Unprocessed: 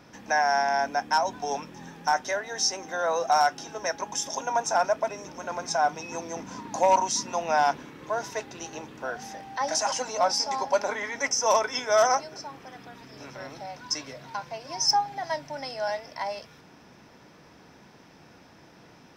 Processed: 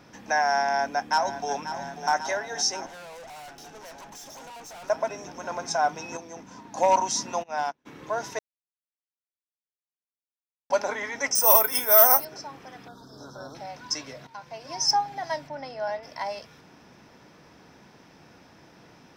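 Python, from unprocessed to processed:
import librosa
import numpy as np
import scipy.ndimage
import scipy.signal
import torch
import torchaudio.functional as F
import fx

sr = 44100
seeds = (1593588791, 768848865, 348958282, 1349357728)

y = fx.echo_throw(x, sr, start_s=0.63, length_s=0.89, ms=540, feedback_pct=80, wet_db=-11.0)
y = fx.tube_stage(y, sr, drive_db=42.0, bias=0.75, at=(2.86, 4.9))
y = fx.upward_expand(y, sr, threshold_db=-39.0, expansion=2.5, at=(7.42, 7.85), fade=0.02)
y = fx.resample_bad(y, sr, factor=3, down='none', up='zero_stuff', at=(11.35, 12.25))
y = fx.ellip_bandstop(y, sr, low_hz=1500.0, high_hz=3600.0, order=3, stop_db=40, at=(12.88, 13.55))
y = fx.lowpass(y, sr, hz=1800.0, slope=6, at=(15.48, 16.03))
y = fx.edit(y, sr, fx.clip_gain(start_s=6.17, length_s=0.6, db=-6.5),
    fx.silence(start_s=8.39, length_s=2.31),
    fx.fade_in_from(start_s=14.27, length_s=0.43, floor_db=-12.5), tone=tone)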